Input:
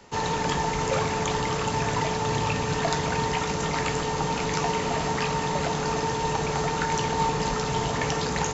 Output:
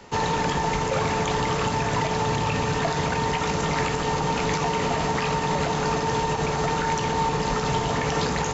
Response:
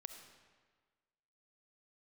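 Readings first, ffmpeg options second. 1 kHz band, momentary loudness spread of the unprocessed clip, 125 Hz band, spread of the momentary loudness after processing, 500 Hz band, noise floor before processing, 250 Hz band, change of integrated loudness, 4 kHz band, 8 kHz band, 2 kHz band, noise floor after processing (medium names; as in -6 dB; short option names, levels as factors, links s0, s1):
+2.0 dB, 1 LU, +2.0 dB, 1 LU, +2.0 dB, -29 dBFS, +2.5 dB, +2.0 dB, +1.0 dB, no reading, +2.0 dB, -27 dBFS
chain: -filter_complex "[0:a]alimiter=limit=0.106:level=0:latency=1:release=81,asplit=2[s0][s1];[1:a]atrim=start_sample=2205,lowpass=5300[s2];[s1][s2]afir=irnorm=-1:irlink=0,volume=0.668[s3];[s0][s3]amix=inputs=2:normalize=0,volume=1.33"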